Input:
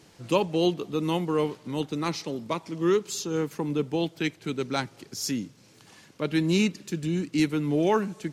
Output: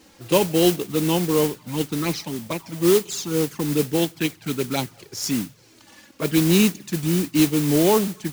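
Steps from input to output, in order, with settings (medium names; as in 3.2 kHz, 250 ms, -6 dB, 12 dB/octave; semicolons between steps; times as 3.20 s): touch-sensitive flanger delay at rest 4 ms, full sweep at -23 dBFS; modulation noise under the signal 11 dB; endings held to a fixed fall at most 390 dB/s; trim +6.5 dB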